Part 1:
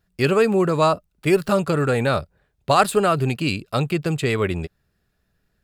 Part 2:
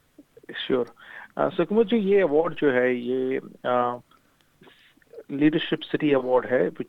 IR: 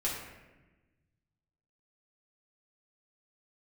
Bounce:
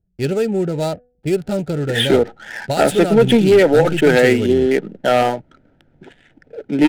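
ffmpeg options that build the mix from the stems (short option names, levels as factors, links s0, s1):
-filter_complex "[0:a]equalizer=f=2000:w=0.48:g=-10.5,bandreject=f=246.3:t=h:w=4,bandreject=f=492.6:t=h:w=4,bandreject=f=738.9:t=h:w=4,volume=1.12[s0];[1:a]aeval=exprs='0.398*sin(PI/2*1.78*val(0)/0.398)':c=same,adelay=1400,volume=1.26[s1];[s0][s1]amix=inputs=2:normalize=0,highshelf=f=5000:g=9,adynamicsmooth=sensitivity=6:basefreq=650,asuperstop=centerf=1100:order=4:qfactor=2.9"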